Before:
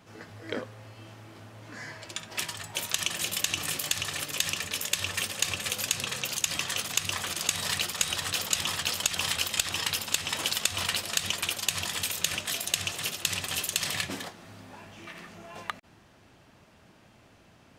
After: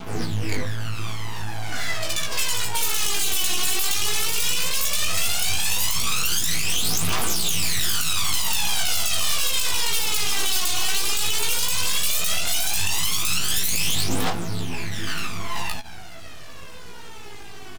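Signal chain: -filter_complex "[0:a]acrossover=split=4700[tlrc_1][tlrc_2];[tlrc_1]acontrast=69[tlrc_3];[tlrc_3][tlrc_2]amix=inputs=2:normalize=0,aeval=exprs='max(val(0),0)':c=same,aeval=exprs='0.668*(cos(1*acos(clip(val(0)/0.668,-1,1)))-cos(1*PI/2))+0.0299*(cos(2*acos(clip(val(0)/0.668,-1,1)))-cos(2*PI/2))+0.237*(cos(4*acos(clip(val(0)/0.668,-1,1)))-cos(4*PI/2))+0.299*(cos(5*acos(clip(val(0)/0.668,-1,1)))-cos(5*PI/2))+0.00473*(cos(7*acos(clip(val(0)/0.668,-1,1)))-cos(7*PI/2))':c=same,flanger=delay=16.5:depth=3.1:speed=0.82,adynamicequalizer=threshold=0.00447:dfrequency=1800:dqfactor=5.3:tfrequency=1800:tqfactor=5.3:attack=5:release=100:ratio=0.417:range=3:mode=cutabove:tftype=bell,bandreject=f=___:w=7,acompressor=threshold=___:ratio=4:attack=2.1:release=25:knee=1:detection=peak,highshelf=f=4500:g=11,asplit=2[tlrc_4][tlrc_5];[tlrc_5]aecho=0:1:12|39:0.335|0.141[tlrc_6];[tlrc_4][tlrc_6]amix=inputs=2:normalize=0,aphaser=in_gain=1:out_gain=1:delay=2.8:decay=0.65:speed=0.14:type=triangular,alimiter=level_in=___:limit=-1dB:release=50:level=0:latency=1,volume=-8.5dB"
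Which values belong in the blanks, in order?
570, -30dB, 11.5dB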